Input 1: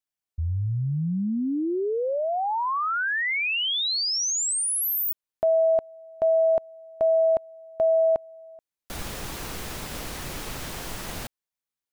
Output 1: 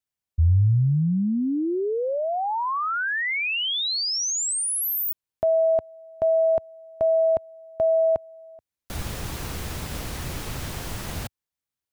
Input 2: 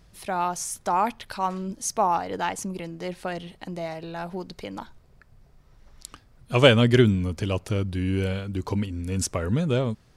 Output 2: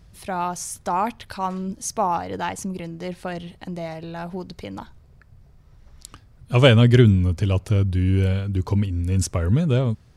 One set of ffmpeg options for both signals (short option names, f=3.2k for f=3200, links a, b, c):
-af "equalizer=f=85:t=o:w=1.9:g=9"